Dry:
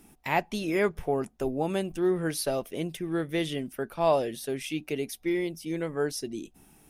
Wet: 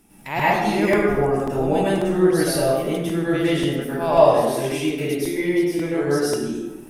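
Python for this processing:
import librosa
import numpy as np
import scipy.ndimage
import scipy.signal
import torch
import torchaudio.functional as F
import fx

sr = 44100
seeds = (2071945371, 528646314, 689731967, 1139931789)

y = fx.rev_plate(x, sr, seeds[0], rt60_s=1.2, hf_ratio=0.55, predelay_ms=90, drr_db=-10.0)
y = fx.buffer_crackle(y, sr, first_s=0.39, period_s=0.54, block=128, kind='repeat')
y = y * 10.0 ** (-1.0 / 20.0)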